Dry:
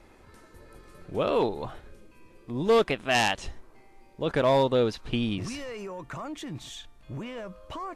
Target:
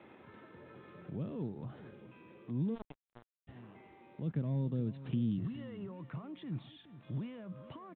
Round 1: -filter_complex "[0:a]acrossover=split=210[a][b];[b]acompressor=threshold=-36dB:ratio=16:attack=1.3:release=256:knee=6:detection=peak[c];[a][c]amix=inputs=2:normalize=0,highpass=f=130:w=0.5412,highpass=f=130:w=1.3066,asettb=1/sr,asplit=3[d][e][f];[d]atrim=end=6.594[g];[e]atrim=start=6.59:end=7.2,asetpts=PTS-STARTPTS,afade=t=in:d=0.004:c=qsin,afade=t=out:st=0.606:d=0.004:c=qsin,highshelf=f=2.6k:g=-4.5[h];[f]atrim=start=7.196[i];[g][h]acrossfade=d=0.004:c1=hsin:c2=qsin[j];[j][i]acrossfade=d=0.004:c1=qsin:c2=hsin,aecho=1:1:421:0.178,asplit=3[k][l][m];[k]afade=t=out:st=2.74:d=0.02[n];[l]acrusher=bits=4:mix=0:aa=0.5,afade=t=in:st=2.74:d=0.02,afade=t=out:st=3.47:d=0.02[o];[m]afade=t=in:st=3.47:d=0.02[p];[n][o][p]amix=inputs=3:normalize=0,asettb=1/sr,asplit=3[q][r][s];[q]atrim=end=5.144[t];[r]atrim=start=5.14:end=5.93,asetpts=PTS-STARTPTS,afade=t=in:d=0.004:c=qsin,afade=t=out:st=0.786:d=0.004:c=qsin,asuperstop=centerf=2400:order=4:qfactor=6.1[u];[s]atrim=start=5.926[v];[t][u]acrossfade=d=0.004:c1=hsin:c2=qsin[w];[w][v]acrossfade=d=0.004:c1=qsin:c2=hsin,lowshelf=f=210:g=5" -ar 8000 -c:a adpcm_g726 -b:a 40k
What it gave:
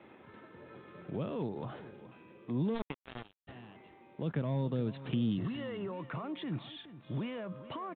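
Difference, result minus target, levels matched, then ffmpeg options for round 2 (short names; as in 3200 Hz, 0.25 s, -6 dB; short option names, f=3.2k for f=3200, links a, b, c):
compressor: peak gain reduction -11 dB
-filter_complex "[0:a]acrossover=split=210[a][b];[b]acompressor=threshold=-48dB:ratio=16:attack=1.3:release=256:knee=6:detection=peak[c];[a][c]amix=inputs=2:normalize=0,highpass=f=130:w=0.5412,highpass=f=130:w=1.3066,asettb=1/sr,asplit=3[d][e][f];[d]atrim=end=6.594[g];[e]atrim=start=6.59:end=7.2,asetpts=PTS-STARTPTS,afade=t=in:d=0.004:c=qsin,afade=t=out:st=0.606:d=0.004:c=qsin,highshelf=f=2.6k:g=-4.5[h];[f]atrim=start=7.196[i];[g][h]acrossfade=d=0.004:c1=hsin:c2=qsin[j];[j][i]acrossfade=d=0.004:c1=qsin:c2=hsin,aecho=1:1:421:0.178,asplit=3[k][l][m];[k]afade=t=out:st=2.74:d=0.02[n];[l]acrusher=bits=4:mix=0:aa=0.5,afade=t=in:st=2.74:d=0.02,afade=t=out:st=3.47:d=0.02[o];[m]afade=t=in:st=3.47:d=0.02[p];[n][o][p]amix=inputs=3:normalize=0,asettb=1/sr,asplit=3[q][r][s];[q]atrim=end=5.144[t];[r]atrim=start=5.14:end=5.93,asetpts=PTS-STARTPTS,afade=t=in:d=0.004:c=qsin,afade=t=out:st=0.786:d=0.004:c=qsin,asuperstop=centerf=2400:order=4:qfactor=6.1[u];[s]atrim=start=5.926[v];[t][u]acrossfade=d=0.004:c1=hsin:c2=qsin[w];[w][v]acrossfade=d=0.004:c1=qsin:c2=hsin,lowshelf=f=210:g=5" -ar 8000 -c:a adpcm_g726 -b:a 40k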